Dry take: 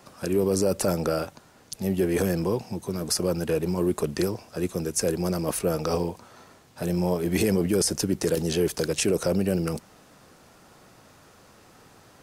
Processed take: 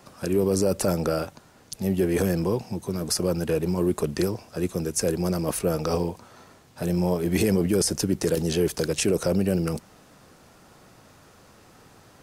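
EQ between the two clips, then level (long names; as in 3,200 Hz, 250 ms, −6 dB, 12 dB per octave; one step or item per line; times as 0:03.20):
low-shelf EQ 200 Hz +3 dB
0.0 dB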